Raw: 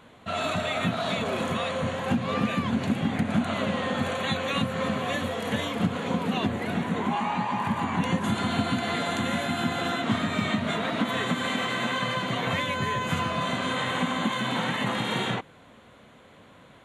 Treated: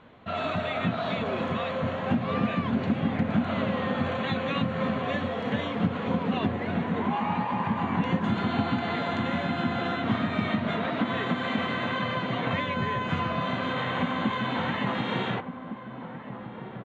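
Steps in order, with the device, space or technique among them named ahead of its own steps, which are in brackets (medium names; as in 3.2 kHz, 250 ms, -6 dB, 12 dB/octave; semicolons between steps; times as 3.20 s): shout across a valley (distance through air 230 m; echo from a far wall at 250 m, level -9 dB)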